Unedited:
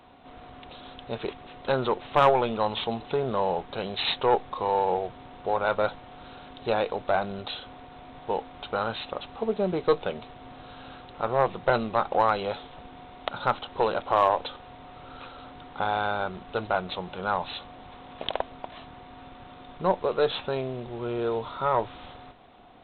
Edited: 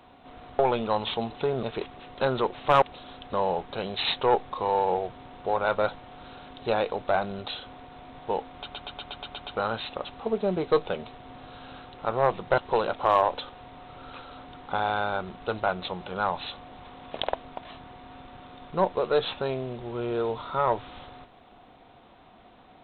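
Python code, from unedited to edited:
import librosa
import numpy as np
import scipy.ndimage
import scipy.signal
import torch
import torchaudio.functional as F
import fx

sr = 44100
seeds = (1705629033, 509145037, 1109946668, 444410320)

y = fx.edit(x, sr, fx.swap(start_s=0.59, length_s=0.51, other_s=2.29, other_length_s=1.04),
    fx.stutter(start_s=8.56, slice_s=0.12, count=8),
    fx.cut(start_s=11.74, length_s=1.91), tone=tone)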